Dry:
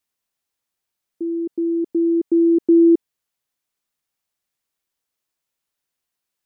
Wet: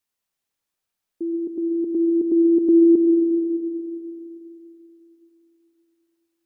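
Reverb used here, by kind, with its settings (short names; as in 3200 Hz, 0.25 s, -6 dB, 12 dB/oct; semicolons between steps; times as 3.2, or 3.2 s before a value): digital reverb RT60 3.1 s, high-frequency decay 0.45×, pre-delay 60 ms, DRR 2.5 dB; gain -2 dB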